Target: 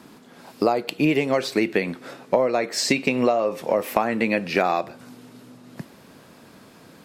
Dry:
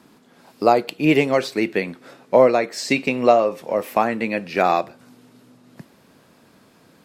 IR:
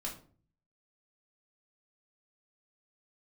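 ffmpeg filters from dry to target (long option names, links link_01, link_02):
-af "acompressor=threshold=-21dB:ratio=12,volume=5dB"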